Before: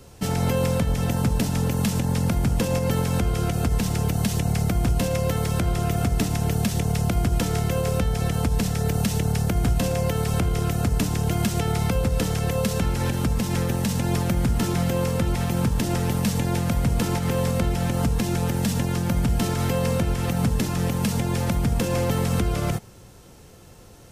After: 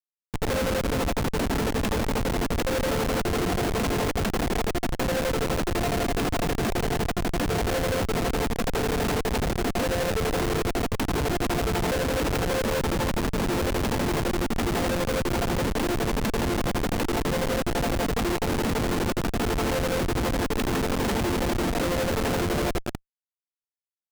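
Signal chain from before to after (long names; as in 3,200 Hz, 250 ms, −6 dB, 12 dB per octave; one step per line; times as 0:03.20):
fade in at the beginning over 0.62 s
square-wave tremolo 12 Hz, depth 60%, duty 40%
Butterworth high-pass 260 Hz 36 dB per octave
high-shelf EQ 11,000 Hz −4 dB
single-tap delay 193 ms −13.5 dB
automatic gain control gain up to 15.5 dB
high-shelf EQ 3,300 Hz −6.5 dB
downward compressor 4 to 1, threshold −20 dBFS, peak gain reduction 9 dB
comparator with hysteresis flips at −23.5 dBFS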